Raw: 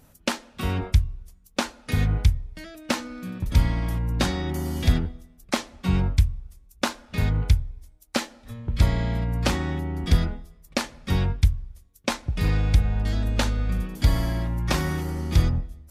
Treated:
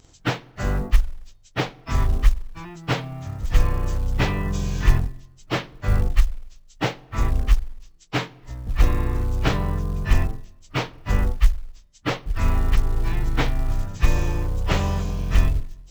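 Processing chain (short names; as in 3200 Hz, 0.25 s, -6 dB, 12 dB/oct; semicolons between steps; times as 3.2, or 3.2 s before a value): pitch shift by moving bins -11 st; short-mantissa float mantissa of 4-bit; gain +4.5 dB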